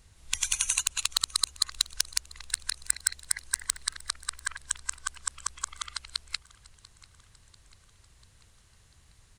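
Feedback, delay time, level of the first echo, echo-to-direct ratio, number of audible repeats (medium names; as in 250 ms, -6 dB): 57%, 692 ms, -22.5 dB, -21.0 dB, 3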